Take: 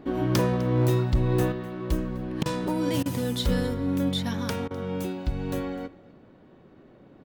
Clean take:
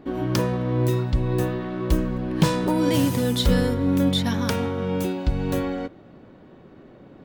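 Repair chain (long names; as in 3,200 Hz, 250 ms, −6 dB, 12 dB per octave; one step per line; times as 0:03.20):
clipped peaks rebuilt −15.5 dBFS
repair the gap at 0:02.43/0:03.03/0:04.68, 26 ms
echo removal 253 ms −21.5 dB
level 0 dB, from 0:01.52 +5.5 dB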